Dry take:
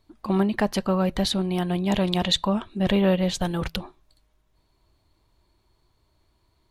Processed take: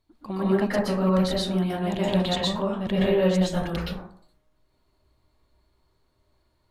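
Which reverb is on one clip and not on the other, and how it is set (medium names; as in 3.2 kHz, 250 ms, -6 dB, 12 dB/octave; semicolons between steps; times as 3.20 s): plate-style reverb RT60 0.57 s, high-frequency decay 0.4×, pre-delay 110 ms, DRR -7 dB; trim -8.5 dB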